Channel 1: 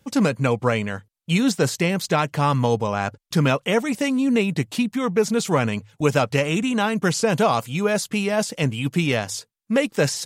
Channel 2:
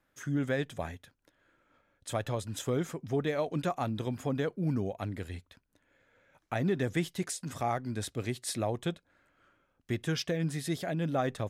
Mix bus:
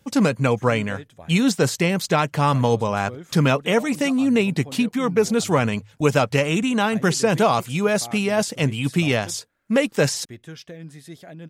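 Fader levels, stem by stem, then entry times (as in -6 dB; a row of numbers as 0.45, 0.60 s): +1.0, -7.0 dB; 0.00, 0.40 s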